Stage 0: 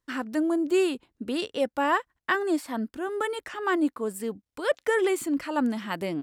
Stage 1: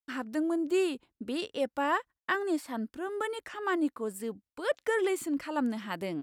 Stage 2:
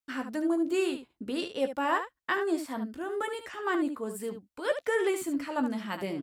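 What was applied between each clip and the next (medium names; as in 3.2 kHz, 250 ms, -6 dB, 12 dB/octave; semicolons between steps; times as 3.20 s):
gate with hold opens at -47 dBFS; trim -4.5 dB
early reflections 15 ms -8 dB, 73 ms -9 dB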